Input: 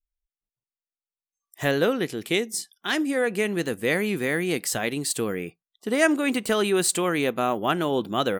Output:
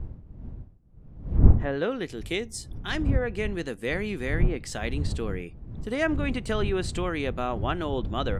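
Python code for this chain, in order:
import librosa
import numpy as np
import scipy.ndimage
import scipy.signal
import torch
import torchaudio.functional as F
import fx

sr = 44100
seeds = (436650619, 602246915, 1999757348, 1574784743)

y = fx.dmg_wind(x, sr, seeds[0], corner_hz=95.0, level_db=-22.0)
y = fx.env_lowpass_down(y, sr, base_hz=1500.0, full_db=-12.0)
y = F.gain(torch.from_numpy(y), -5.5).numpy()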